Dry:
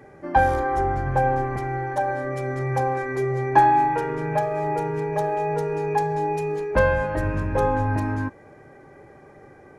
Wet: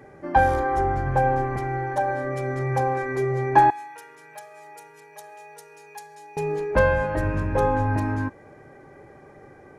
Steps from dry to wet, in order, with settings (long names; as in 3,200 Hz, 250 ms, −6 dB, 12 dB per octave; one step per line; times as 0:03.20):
0:03.70–0:06.37: first difference